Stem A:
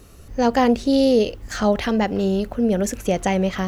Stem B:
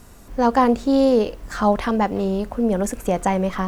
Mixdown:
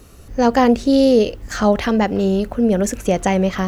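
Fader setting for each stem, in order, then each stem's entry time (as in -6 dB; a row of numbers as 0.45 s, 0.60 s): +2.0 dB, -11.0 dB; 0.00 s, 0.00 s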